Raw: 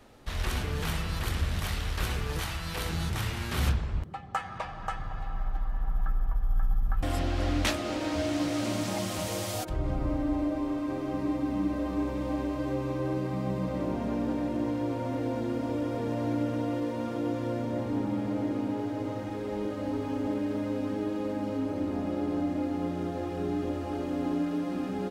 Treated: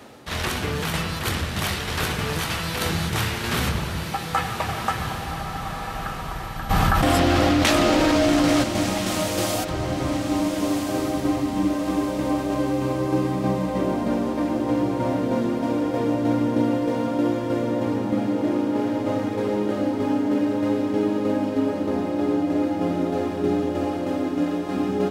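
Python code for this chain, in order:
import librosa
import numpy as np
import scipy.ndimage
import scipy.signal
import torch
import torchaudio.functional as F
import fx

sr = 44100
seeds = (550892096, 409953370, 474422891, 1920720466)

p1 = scipy.signal.sosfilt(scipy.signal.butter(2, 120.0, 'highpass', fs=sr, output='sos'), x)
p2 = fx.rider(p1, sr, range_db=5, speed_s=0.5)
p3 = p1 + (p2 * 10.0 ** (2.0 / 20.0))
p4 = fx.tremolo_shape(p3, sr, shape='saw_down', hz=3.2, depth_pct=45)
p5 = p4 + fx.echo_diffused(p4, sr, ms=1425, feedback_pct=50, wet_db=-6.5, dry=0)
p6 = fx.env_flatten(p5, sr, amount_pct=100, at=(6.69, 8.62), fade=0.02)
y = p6 * 10.0 ** (2.5 / 20.0)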